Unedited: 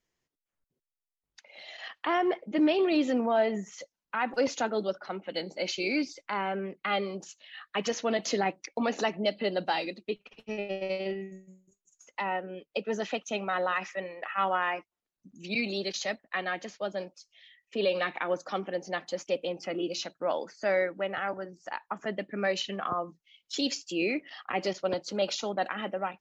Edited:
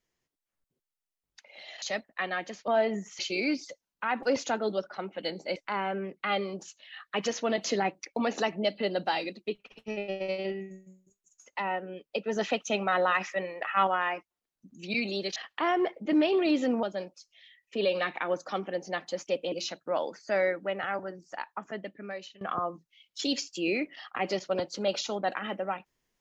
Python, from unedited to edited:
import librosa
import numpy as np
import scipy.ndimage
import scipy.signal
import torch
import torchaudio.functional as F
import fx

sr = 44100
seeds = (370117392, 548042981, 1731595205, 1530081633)

y = fx.edit(x, sr, fx.swap(start_s=1.82, length_s=1.47, other_s=15.97, other_length_s=0.86),
    fx.move(start_s=5.67, length_s=0.5, to_s=3.8),
    fx.clip_gain(start_s=12.97, length_s=1.51, db=3.5),
    fx.cut(start_s=19.52, length_s=0.34),
    fx.fade_out_to(start_s=21.63, length_s=1.12, floor_db=-22.0), tone=tone)